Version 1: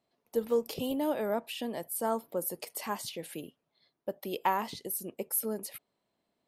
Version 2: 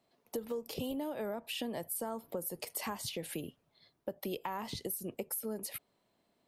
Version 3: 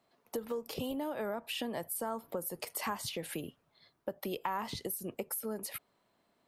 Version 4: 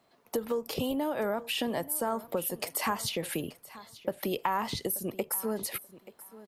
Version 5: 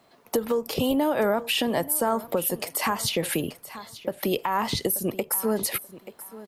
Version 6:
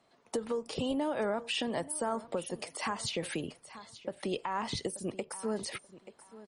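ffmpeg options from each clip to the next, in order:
-filter_complex "[0:a]acrossover=split=110[s0][s1];[s0]dynaudnorm=f=260:g=9:m=3.76[s2];[s1]alimiter=level_in=1.06:limit=0.0631:level=0:latency=1:release=193,volume=0.944[s3];[s2][s3]amix=inputs=2:normalize=0,acompressor=threshold=0.01:ratio=5,volume=1.68"
-af "equalizer=f=1300:t=o:w=1.3:g=6"
-af "aecho=1:1:882|1764:0.126|0.0227,volume=2"
-af "alimiter=limit=0.0841:level=0:latency=1:release=211,volume=2.51"
-af "volume=0.376" -ar 48000 -c:a libmp3lame -b:a 40k

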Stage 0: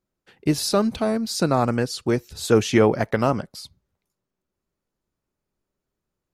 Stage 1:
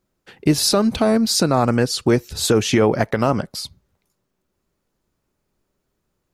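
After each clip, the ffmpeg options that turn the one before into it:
-af "alimiter=limit=0.178:level=0:latency=1:release=238,volume=2.82"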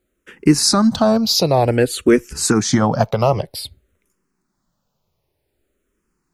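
-filter_complex "[0:a]asplit=2[s0][s1];[s1]afreqshift=-0.53[s2];[s0][s2]amix=inputs=2:normalize=1,volume=1.78"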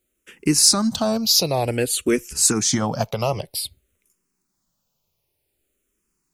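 -af "aexciter=amount=2.9:drive=3.3:freq=2300,volume=0.447"

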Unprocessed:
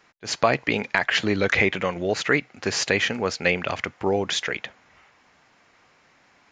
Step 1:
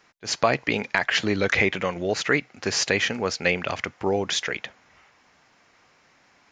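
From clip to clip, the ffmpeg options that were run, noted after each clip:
-af "equalizer=f=5600:t=o:w=0.6:g=3.5,volume=0.891"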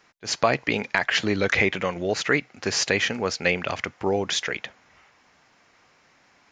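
-af anull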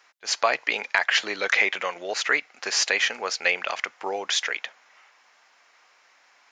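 -af "highpass=700,volume=1.19"

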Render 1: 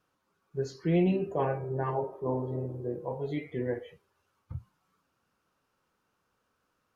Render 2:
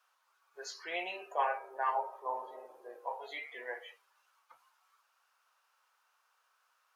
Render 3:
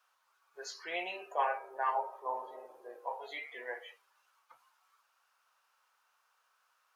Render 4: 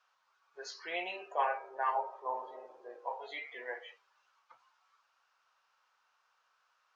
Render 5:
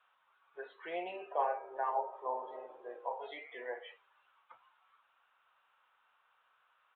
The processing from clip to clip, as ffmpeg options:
-af "highpass=f=770:w=0.5412,highpass=f=770:w=1.3066,volume=1.68"
-af "lowshelf=f=120:g=5.5"
-af "lowpass=f=6300:w=0.5412,lowpass=f=6300:w=1.3066"
-filter_complex "[0:a]acrossover=split=920[s0][s1];[s1]acompressor=threshold=0.00316:ratio=6[s2];[s0][s2]amix=inputs=2:normalize=0,aresample=8000,aresample=44100,volume=1.33"

